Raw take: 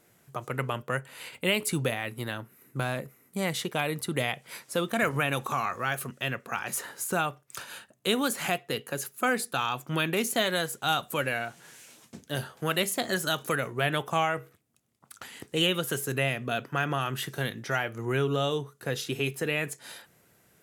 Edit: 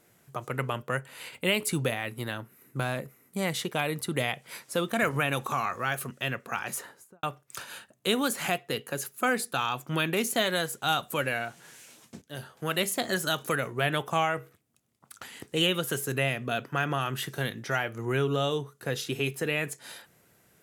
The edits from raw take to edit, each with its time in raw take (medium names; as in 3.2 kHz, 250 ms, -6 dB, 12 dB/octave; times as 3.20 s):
6.64–7.23 s: studio fade out
12.22–12.86 s: fade in linear, from -12 dB